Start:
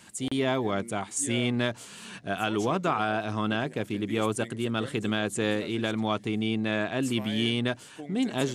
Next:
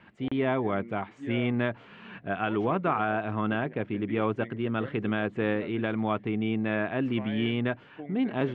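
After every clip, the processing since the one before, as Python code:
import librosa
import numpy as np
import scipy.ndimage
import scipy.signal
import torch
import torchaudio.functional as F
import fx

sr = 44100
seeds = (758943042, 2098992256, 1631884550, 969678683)

y = scipy.signal.sosfilt(scipy.signal.butter(4, 2500.0, 'lowpass', fs=sr, output='sos'), x)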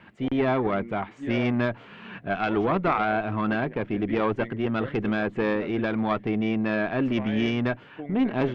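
y = fx.tube_stage(x, sr, drive_db=17.0, bias=0.75)
y = y * 10.0 ** (8.5 / 20.0)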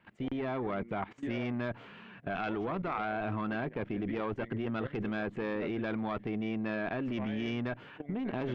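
y = fx.level_steps(x, sr, step_db=17)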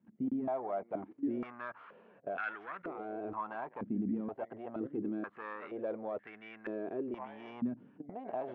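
y = fx.filter_held_bandpass(x, sr, hz=2.1, low_hz=230.0, high_hz=1600.0)
y = y * 10.0 ** (5.5 / 20.0)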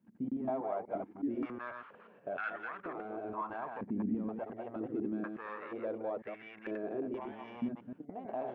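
y = fx.reverse_delay(x, sr, ms=122, wet_db=-4)
y = y * 10.0 ** (-1.0 / 20.0)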